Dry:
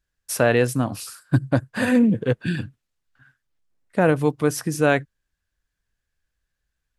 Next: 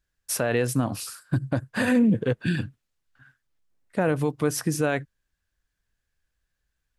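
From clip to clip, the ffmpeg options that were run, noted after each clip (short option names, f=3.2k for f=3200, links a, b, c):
-af "alimiter=limit=-13.5dB:level=0:latency=1:release=75"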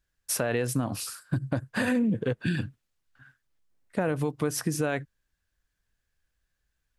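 -af "acompressor=threshold=-24dB:ratio=3"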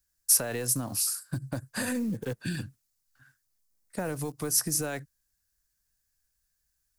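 -filter_complex "[0:a]acrossover=split=380|400|2600[a][b][c][d];[b]acrusher=bits=6:dc=4:mix=0:aa=0.000001[e];[a][e][c][d]amix=inputs=4:normalize=0,aexciter=amount=3.6:drive=6.9:freq=4.5k,volume=-5dB"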